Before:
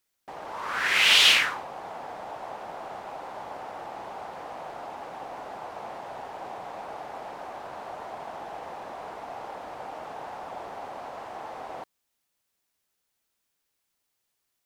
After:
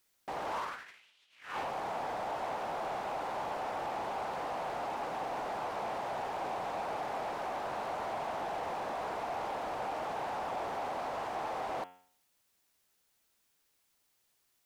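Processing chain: de-hum 90.47 Hz, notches 38; compressor with a negative ratio -36 dBFS, ratio -0.5; saturation -30 dBFS, distortion -17 dB

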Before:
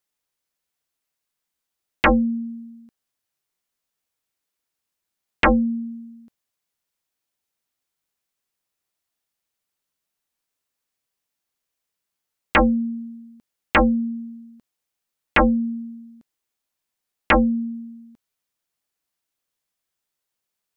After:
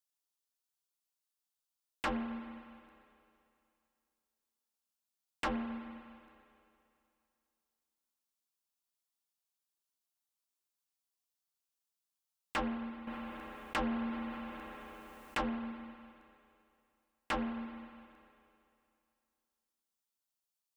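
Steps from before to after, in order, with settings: ten-band graphic EQ 125 Hz -7 dB, 250 Hz -3 dB, 500 Hz -9 dB, 2 kHz -10 dB; saturation -23 dBFS, distortion -10 dB; bass shelf 130 Hz -9.5 dB; reverberation RT60 2.6 s, pre-delay 31 ms, DRR 7.5 dB; 13.07–15.41 s: level flattener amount 50%; trim -6.5 dB

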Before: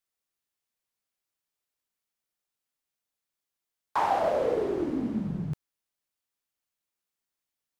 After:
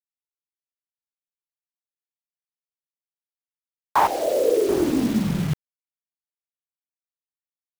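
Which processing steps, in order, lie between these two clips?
4.07–4.69 s: Butterworth band-pass 410 Hz, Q 1.5; bit crusher 7-bit; trim +8.5 dB

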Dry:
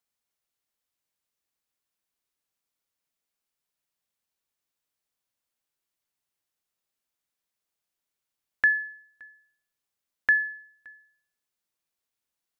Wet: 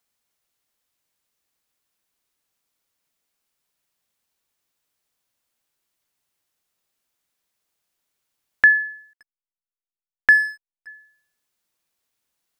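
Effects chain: 9.13–10.87 s: hysteresis with a dead band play -36.5 dBFS; trim +8 dB

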